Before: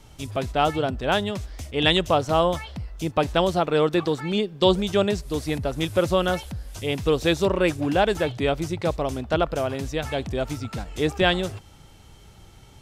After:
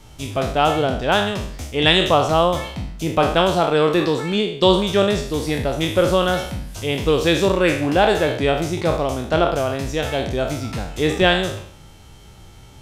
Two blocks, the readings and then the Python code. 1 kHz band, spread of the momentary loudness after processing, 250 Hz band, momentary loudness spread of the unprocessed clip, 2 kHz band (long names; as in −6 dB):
+5.5 dB, 9 LU, +4.0 dB, 10 LU, +6.0 dB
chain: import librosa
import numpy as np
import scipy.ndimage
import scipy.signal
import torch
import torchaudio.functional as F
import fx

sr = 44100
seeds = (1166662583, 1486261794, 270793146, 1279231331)

y = fx.spec_trails(x, sr, decay_s=0.59)
y = y * 10.0 ** (3.0 / 20.0)